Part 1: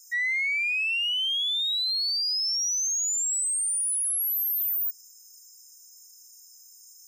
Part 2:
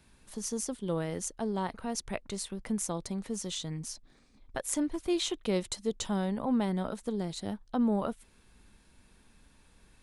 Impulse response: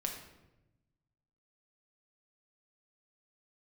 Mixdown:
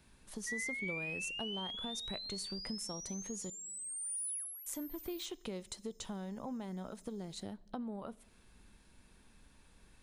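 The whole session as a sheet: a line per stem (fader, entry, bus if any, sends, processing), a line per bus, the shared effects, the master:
+2.0 dB, 0.35 s, send -24 dB, HPF 1100 Hz 12 dB/oct; tilt -4.5 dB/oct; auto duck -13 dB, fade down 0.30 s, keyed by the second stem
-3.0 dB, 0.00 s, muted 3.5–4.66, send -17.5 dB, compressor 6:1, threshold -38 dBFS, peak gain reduction 13 dB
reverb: on, RT60 1.0 s, pre-delay 5 ms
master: dry

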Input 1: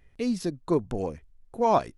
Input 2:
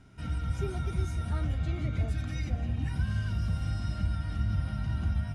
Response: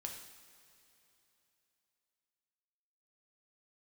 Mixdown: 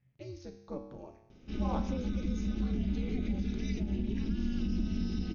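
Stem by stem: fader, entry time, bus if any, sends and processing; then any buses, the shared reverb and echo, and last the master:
-2.5 dB, 0.00 s, no send, resonator 110 Hz, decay 0.97 s, harmonics all, mix 80%
+2.5 dB, 1.30 s, no send, band shelf 1100 Hz -11 dB; limiter -24.5 dBFS, peak gain reduction 5.5 dB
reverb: off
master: brick-wall FIR low-pass 6700 Hz; ring modulator 130 Hz

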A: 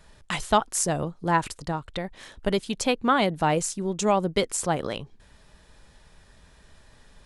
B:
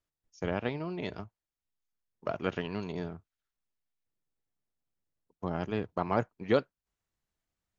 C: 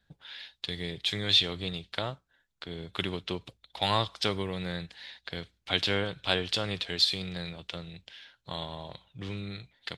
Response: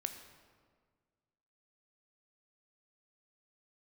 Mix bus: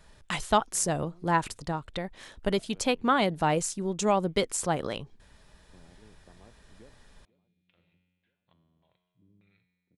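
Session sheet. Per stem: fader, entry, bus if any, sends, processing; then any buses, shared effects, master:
-2.5 dB, 0.00 s, no send, no echo send, dry
-19.5 dB, 0.30 s, no send, echo send -20 dB, bell 1600 Hz -12 dB 2.3 oct; compressor, threshold -31 dBFS, peak gain reduction 8.5 dB
-16.5 dB, 0.00 s, no send, no echo send, LFO low-pass square 1.7 Hz 270–2400 Hz; resonator 90 Hz, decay 1.8 s, harmonics all, mix 80%; auto duck -20 dB, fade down 0.45 s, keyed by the first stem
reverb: off
echo: feedback echo 0.488 s, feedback 53%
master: dry

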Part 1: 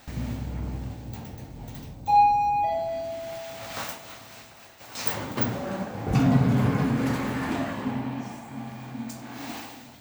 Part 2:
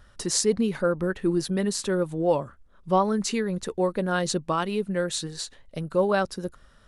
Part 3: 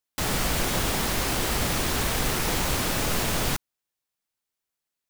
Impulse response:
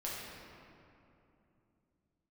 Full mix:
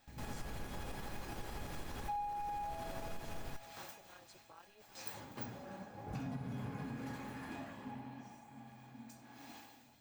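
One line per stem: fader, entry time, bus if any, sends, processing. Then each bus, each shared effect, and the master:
-5.5 dB, 0.00 s, no send, dry
-17.0 dB, 0.00 s, no send, HPF 370 Hz 12 dB/oct; AM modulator 210 Hz, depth 85%
-2.5 dB, 0.00 s, no send, high shelf 2400 Hz -11 dB; tremolo saw up 12 Hz, depth 45%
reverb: off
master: resonator 830 Hz, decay 0.16 s, harmonics all, mix 80%; compressor 8:1, threshold -38 dBFS, peak gain reduction 14.5 dB

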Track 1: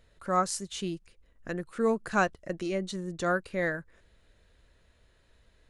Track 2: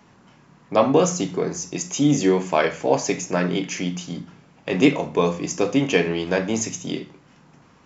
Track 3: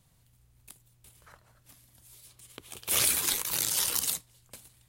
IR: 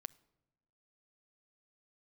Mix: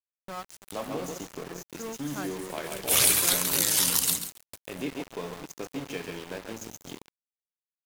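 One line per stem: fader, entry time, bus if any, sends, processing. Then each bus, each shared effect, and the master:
-8.5 dB, 0.00 s, bus A, send -6 dB, no echo send, dry
-12.5 dB, 0.00 s, bus A, send -6 dB, echo send -9.5 dB, dry
+2.0 dB, 0.00 s, no bus, send -6.5 dB, echo send -8 dB, dry
bus A: 0.0 dB, high shelf 5900 Hz -2.5 dB; compressor 4:1, threshold -40 dBFS, peak gain reduction 14.5 dB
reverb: on, pre-delay 7 ms
echo: feedback echo 0.138 s, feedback 26%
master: sample gate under -37 dBFS

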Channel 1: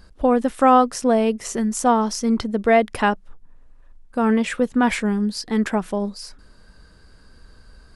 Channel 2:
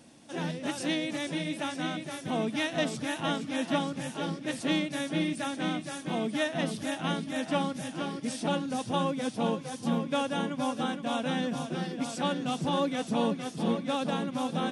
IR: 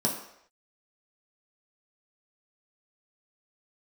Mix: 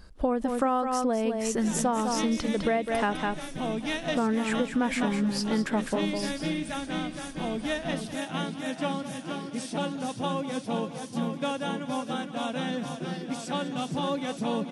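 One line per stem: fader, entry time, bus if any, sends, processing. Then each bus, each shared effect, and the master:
-2.0 dB, 0.00 s, no send, echo send -7.5 dB, dry
-0.5 dB, 1.30 s, no send, echo send -14.5 dB, dry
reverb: off
echo: echo 0.205 s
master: compressor, threshold -23 dBFS, peak gain reduction 11.5 dB

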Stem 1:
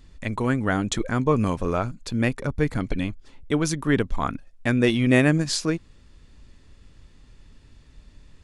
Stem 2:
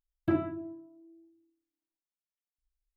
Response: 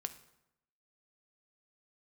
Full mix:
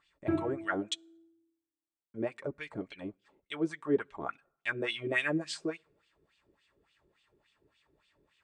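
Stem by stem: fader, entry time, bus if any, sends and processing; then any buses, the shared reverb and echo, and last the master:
-0.5 dB, 0.00 s, muted 0.94–2.14, send -19 dB, wah 3.5 Hz 360–3200 Hz, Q 3.1
-2.5 dB, 0.00 s, no send, high shelf 3500 Hz -12 dB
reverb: on, RT60 0.85 s, pre-delay 3 ms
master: bell 8200 Hz +13.5 dB 0.22 oct; notch comb 250 Hz

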